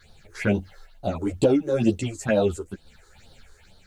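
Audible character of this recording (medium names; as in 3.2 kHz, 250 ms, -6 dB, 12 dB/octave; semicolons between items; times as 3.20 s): phasing stages 6, 2.2 Hz, lowest notch 170–2200 Hz; a quantiser's noise floor 12-bit, dither none; random-step tremolo; a shimmering, thickened sound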